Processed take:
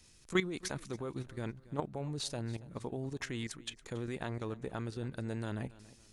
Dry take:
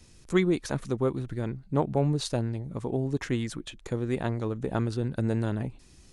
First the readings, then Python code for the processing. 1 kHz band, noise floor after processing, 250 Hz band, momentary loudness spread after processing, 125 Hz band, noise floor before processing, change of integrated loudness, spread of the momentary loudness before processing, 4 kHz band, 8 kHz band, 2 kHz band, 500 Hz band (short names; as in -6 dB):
-8.5 dB, -62 dBFS, -10.5 dB, 8 LU, -11.0 dB, -54 dBFS, -10.0 dB, 8 LU, -3.0 dB, -3.0 dB, -3.5 dB, -10.5 dB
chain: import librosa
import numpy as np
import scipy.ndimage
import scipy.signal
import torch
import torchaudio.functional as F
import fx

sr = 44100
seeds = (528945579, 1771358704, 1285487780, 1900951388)

p1 = fx.tilt_shelf(x, sr, db=-4.0, hz=970.0)
p2 = fx.level_steps(p1, sr, step_db=12)
p3 = p2 + fx.echo_feedback(p2, sr, ms=279, feedback_pct=33, wet_db=-19.5, dry=0)
y = p3 * librosa.db_to_amplitude(-2.0)